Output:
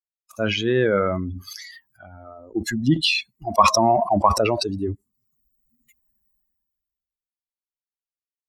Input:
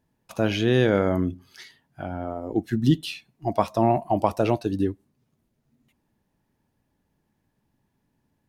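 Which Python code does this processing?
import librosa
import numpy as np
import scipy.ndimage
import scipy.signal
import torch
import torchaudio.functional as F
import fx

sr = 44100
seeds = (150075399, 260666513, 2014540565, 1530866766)

y = fx.bin_expand(x, sr, power=2.0)
y = fx.low_shelf(y, sr, hz=200.0, db=-8.5)
y = fx.env_lowpass_down(y, sr, base_hz=2200.0, full_db=-22.0)
y = fx.peak_eq(y, sr, hz=1100.0, db=11.0, octaves=0.32)
y = fx.sustainer(y, sr, db_per_s=31.0)
y = y * librosa.db_to_amplitude(5.5)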